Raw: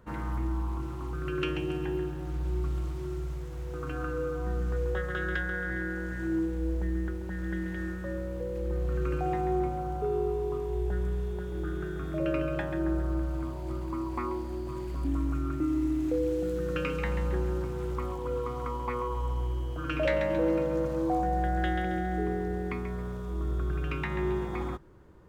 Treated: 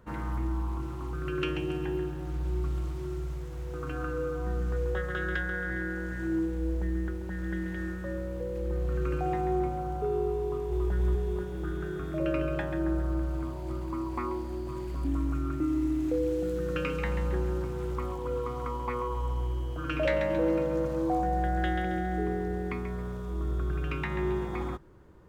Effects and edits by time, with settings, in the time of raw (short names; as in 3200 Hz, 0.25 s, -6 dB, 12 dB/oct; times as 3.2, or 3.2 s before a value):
10.43–10.87 echo throw 0.28 s, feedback 70%, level -2.5 dB